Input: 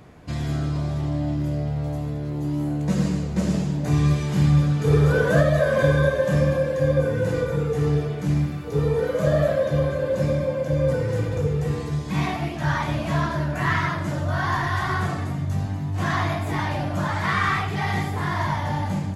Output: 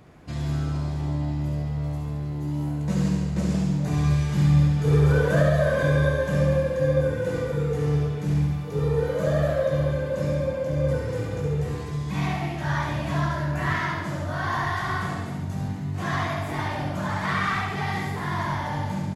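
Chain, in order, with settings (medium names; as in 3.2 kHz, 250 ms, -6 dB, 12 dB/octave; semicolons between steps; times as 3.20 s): feedback delay 69 ms, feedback 59%, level -5 dB; trim -4 dB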